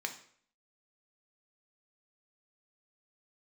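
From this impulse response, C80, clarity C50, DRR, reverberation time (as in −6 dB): 14.5 dB, 11.0 dB, 4.0 dB, 0.55 s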